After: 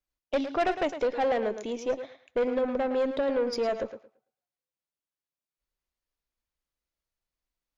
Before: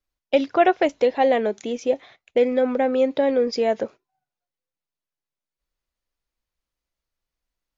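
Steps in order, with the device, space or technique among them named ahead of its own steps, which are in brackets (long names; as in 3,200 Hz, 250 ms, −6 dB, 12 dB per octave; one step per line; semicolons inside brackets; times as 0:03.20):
rockabilly slapback (tube saturation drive 16 dB, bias 0.3; tape delay 110 ms, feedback 21%, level −9 dB, low-pass 5,100 Hz)
level −4.5 dB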